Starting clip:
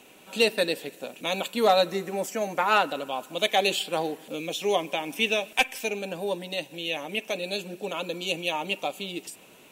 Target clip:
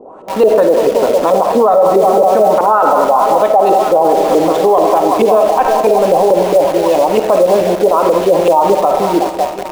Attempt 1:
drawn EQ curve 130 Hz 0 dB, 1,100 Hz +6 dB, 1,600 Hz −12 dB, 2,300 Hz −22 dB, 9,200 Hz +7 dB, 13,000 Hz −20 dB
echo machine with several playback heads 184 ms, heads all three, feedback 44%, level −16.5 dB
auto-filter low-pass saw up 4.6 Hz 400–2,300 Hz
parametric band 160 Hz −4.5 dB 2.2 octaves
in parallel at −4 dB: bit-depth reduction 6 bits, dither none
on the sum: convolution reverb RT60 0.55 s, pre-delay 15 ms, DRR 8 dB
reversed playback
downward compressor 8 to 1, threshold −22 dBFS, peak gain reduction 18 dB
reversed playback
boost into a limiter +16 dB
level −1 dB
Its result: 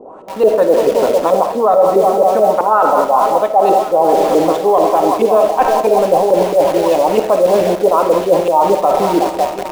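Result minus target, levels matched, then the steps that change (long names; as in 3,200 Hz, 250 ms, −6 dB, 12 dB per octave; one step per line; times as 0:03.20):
downward compressor: peak gain reduction +9 dB
change: downward compressor 8 to 1, threshold −12 dBFS, peak gain reduction 9 dB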